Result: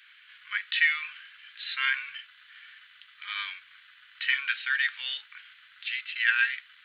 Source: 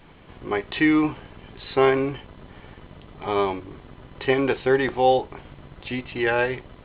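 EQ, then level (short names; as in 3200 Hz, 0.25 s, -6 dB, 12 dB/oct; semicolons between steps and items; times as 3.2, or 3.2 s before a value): elliptic high-pass 1500 Hz, stop band 50 dB; +3.5 dB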